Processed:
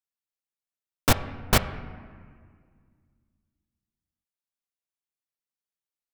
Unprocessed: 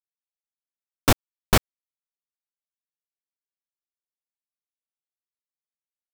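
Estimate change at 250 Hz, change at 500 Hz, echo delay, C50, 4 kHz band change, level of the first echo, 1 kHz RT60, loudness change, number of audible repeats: -2.5 dB, -2.0 dB, none, 13.0 dB, -1.5 dB, none, 1.8 s, -2.0 dB, none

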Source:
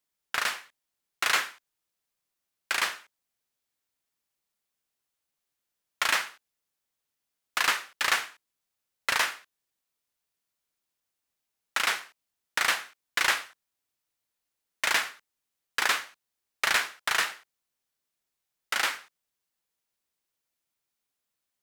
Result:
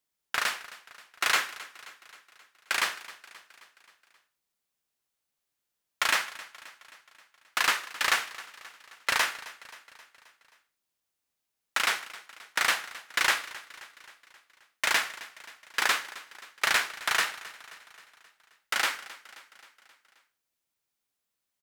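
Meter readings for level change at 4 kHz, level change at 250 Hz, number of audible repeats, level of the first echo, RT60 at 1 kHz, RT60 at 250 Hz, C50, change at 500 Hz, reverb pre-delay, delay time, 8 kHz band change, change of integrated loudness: 0.0 dB, 0.0 dB, 4, -18.0 dB, none, none, none, 0.0 dB, none, 0.265 s, 0.0 dB, 0.0 dB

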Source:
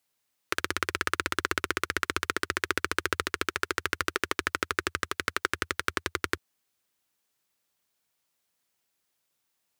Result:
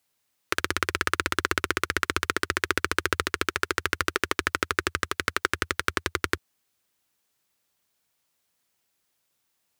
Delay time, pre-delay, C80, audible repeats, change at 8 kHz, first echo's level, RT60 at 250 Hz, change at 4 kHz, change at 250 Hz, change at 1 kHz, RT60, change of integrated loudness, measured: none, none, none, none, +3.0 dB, none, none, +3.0 dB, +3.5 dB, +3.0 dB, none, +3.0 dB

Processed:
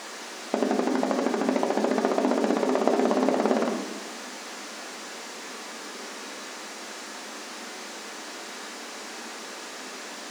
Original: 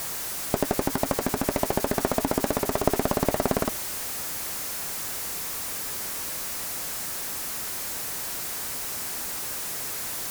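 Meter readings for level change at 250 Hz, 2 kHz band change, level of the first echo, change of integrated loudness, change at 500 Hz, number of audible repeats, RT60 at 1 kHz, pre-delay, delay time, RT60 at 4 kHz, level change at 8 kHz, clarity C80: +3.5 dB, +0.5 dB, none, -1.5 dB, +3.0 dB, none, 1.1 s, 3 ms, none, 0.80 s, -9.0 dB, 9.5 dB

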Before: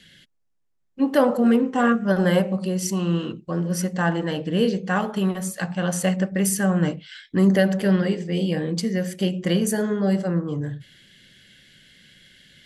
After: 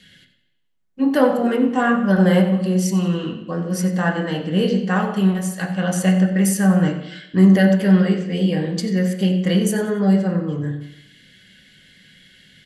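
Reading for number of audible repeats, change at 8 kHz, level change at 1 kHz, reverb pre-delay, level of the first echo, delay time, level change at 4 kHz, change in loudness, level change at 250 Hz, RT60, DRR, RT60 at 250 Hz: 1, +0.5 dB, +2.5 dB, 3 ms, -14.0 dB, 92 ms, +2.0 dB, +4.0 dB, +5.0 dB, 0.80 s, 1.0 dB, 0.85 s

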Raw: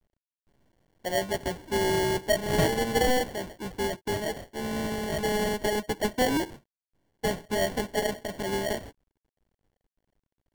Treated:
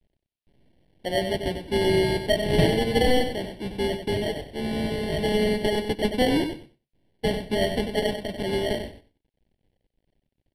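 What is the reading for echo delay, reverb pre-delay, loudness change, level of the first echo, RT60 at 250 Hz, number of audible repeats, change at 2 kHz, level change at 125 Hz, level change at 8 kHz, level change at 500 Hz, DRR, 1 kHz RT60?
94 ms, none, +3.5 dB, -8.0 dB, none, 2, +1.0 dB, +5.5 dB, -5.0 dB, +4.0 dB, none, none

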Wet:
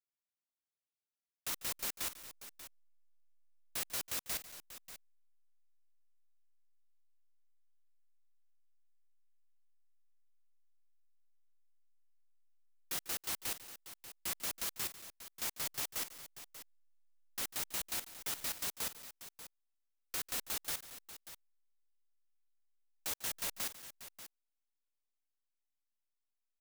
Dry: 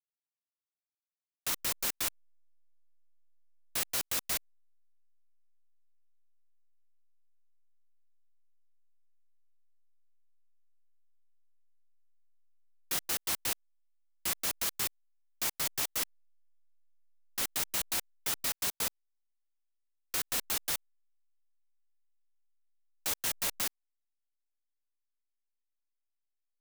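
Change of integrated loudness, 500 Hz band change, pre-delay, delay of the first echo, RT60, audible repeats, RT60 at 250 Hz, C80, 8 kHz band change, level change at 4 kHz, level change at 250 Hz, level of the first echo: -6.0 dB, -5.5 dB, none, 0.146 s, none, 2, none, none, -5.5 dB, -5.5 dB, -5.5 dB, -15.5 dB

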